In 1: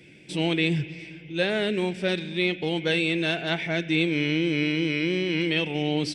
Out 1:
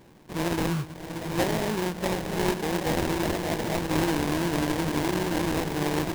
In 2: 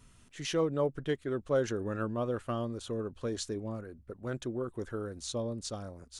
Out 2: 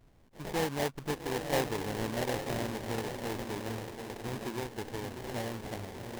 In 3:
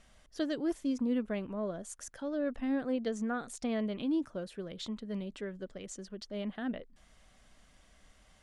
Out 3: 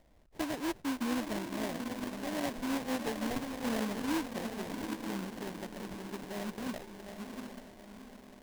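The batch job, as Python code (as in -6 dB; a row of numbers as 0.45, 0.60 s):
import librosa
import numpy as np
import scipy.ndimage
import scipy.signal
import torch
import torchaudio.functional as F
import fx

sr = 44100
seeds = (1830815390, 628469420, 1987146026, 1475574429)

y = fx.echo_diffused(x, sr, ms=788, feedback_pct=46, wet_db=-5)
y = fx.vibrato(y, sr, rate_hz=2.5, depth_cents=7.6)
y = fx.sample_hold(y, sr, seeds[0], rate_hz=1300.0, jitter_pct=20)
y = y * 10.0 ** (-2.5 / 20.0)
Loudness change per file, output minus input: -2.0, -0.5, -1.0 LU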